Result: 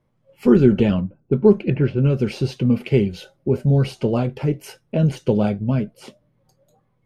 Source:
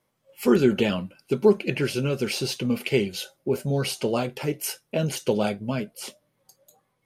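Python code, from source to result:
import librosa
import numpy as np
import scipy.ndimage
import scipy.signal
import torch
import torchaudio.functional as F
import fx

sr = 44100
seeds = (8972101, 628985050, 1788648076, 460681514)

y = fx.env_lowpass(x, sr, base_hz=340.0, full_db=-15.0, at=(1.0, 2.03), fade=0.02)
y = fx.riaa(y, sr, side='playback')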